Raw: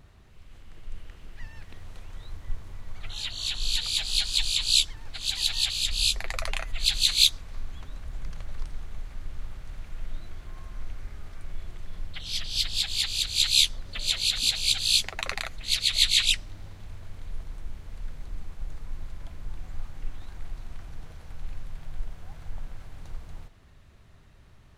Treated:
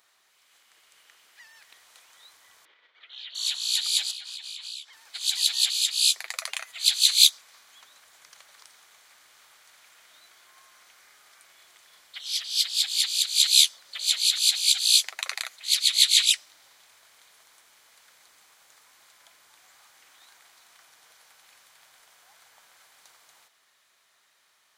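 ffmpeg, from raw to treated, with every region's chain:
ffmpeg -i in.wav -filter_complex "[0:a]asettb=1/sr,asplit=3[link_01][link_02][link_03];[link_01]atrim=end=2.654[link_04];[link_02]atrim=start=2.65:end=3.35,asetpts=PTS-STARTPTS,afade=type=in:duration=0.004:curve=qsin,afade=type=out:start_time=0.696:duration=0.004:curve=qsin,acompressor=threshold=-36dB:ratio=6:attack=3.2:release=140:knee=1:detection=peak,highpass=280,equalizer=frequency=330:width_type=q:width=4:gain=5,equalizer=frequency=470:width_type=q:width=4:gain=6,equalizer=frequency=770:width_type=q:width=4:gain=-6,equalizer=frequency=1100:width_type=q:width=4:gain=-4,equalizer=frequency=1900:width_type=q:width=4:gain=3,equalizer=frequency=3300:width_type=q:width=4:gain=5,lowpass=frequency=3500:width=0.5412,lowpass=frequency=3500:width=1.3066[link_05];[link_03]atrim=start=3.346[link_06];[link_04][link_05]acrossfade=duration=0.004:curve1=hsin:curve2=qsin[link_07];[link_07][link_06]acrossfade=duration=0.004:curve1=qsin:curve2=hsin,asettb=1/sr,asplit=3[link_08][link_09][link_10];[link_08]atrim=end=4.114[link_11];[link_09]atrim=start=4.11:end=4.93,asetpts=PTS-STARTPTS,afade=type=in:duration=0.004:curve=qsin,afade=type=out:start_time=0.816:duration=0.004:curve=qsin,highpass=58,bass=frequency=250:gain=-13,treble=frequency=4000:gain=-12,acompressor=threshold=-37dB:ratio=12:attack=3.2:release=140:knee=1:detection=peak[link_12];[link_10]atrim=start=4.926[link_13];[link_11][link_12]acrossfade=duration=0.004:curve1=hsin:curve2=qsin[link_14];[link_14][link_13]acrossfade=duration=0.004:curve1=qsin:curve2=hsin,highpass=930,highshelf=frequency=4100:gain=11,bandreject=frequency=2700:width=19,volume=-2.5dB" out.wav

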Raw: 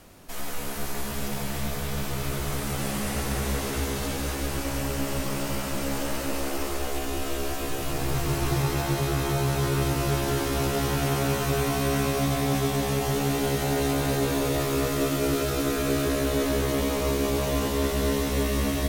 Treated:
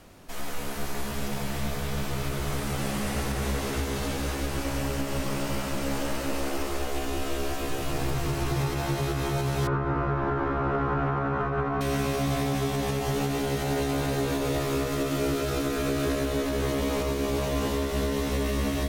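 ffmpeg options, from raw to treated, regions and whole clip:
ffmpeg -i in.wav -filter_complex "[0:a]asettb=1/sr,asplit=3[link_01][link_02][link_03];[link_01]atrim=end=9.674[link_04];[link_02]atrim=start=9.67:end=11.81,asetpts=PTS-STARTPTS,afade=type=in:duration=0.004:curve=qsin,afade=type=out:start_time=2.136:duration=0.004:curve=qsin,lowpass=frequency=1300:width_type=q:width=2.5,asplit=2[link_05][link_06];[link_06]adelay=50,volume=-12dB[link_07];[link_05][link_07]amix=inputs=2:normalize=0,atrim=end_sample=94374[link_08];[link_03]atrim=start=11.806[link_09];[link_04][link_08]acrossfade=duration=0.004:curve1=hsin:curve2=qsin[link_10];[link_10][link_09]acrossfade=duration=0.004:curve1=qsin:curve2=hsin,highshelf=frequency=7600:gain=-6.5,alimiter=limit=-18dB:level=0:latency=1:release=129" out.wav

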